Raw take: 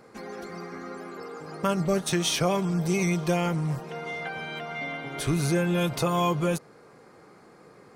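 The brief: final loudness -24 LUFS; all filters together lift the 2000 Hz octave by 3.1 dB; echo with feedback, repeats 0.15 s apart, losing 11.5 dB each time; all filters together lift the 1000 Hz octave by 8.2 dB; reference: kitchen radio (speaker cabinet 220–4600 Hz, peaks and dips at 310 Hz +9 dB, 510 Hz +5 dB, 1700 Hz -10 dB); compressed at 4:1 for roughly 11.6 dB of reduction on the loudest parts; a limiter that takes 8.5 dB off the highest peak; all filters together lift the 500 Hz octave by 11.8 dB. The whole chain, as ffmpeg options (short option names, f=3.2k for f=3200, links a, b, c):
-af "equalizer=f=500:t=o:g=7.5,equalizer=f=1k:t=o:g=7,equalizer=f=2k:t=o:g=5.5,acompressor=threshold=-28dB:ratio=4,alimiter=limit=-24dB:level=0:latency=1,highpass=220,equalizer=f=310:t=q:w=4:g=9,equalizer=f=510:t=q:w=4:g=5,equalizer=f=1.7k:t=q:w=4:g=-10,lowpass=f=4.6k:w=0.5412,lowpass=f=4.6k:w=1.3066,aecho=1:1:150|300|450:0.266|0.0718|0.0194,volume=7dB"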